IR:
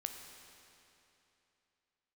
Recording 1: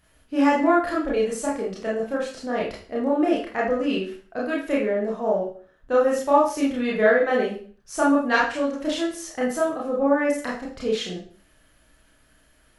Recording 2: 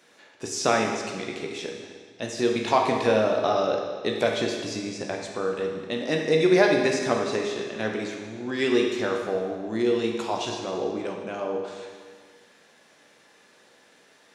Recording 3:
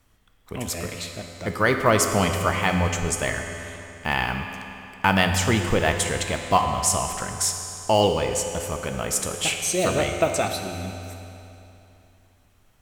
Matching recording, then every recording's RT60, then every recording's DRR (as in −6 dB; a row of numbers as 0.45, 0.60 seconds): 3; 0.45, 1.7, 2.9 seconds; −5.0, 0.5, 4.0 decibels